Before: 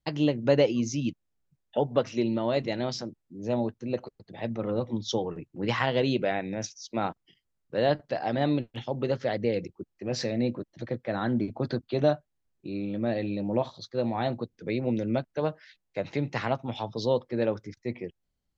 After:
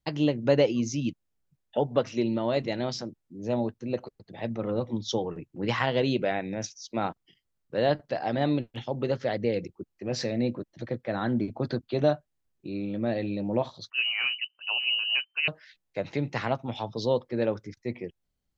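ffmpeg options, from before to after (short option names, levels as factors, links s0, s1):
-filter_complex "[0:a]asettb=1/sr,asplit=3[s0][s1][s2];[s0]atrim=end=13.904[s3];[s1]atrim=start=13.9:end=15.48,asetpts=PTS-STARTPTS,afade=t=in:d=0.004:c=qsin,afade=t=out:st=1.576:d=0.004:c=qsin,lowpass=f=2600:t=q:w=0.5098,lowpass=f=2600:t=q:w=0.6013,lowpass=f=2600:t=q:w=0.9,lowpass=f=2600:t=q:w=2.563,afreqshift=-3100[s4];[s2]atrim=start=15.476[s5];[s3][s4]acrossfade=d=0.004:c1=hsin:c2=qsin[s6];[s6][s5]acrossfade=d=0.004:c1=qsin:c2=hsin"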